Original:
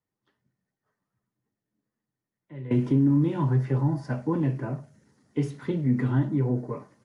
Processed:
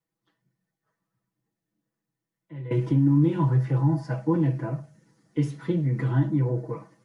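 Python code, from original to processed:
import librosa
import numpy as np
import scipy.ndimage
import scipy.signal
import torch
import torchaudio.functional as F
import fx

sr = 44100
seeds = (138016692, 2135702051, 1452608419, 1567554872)

y = x + 0.94 * np.pad(x, (int(6.1 * sr / 1000.0), 0))[:len(x)]
y = y * 10.0 ** (-2.0 / 20.0)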